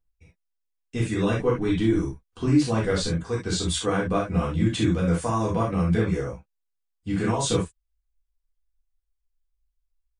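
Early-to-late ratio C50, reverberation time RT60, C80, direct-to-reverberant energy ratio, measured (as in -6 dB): 4.5 dB, not exponential, 27.5 dB, -6.0 dB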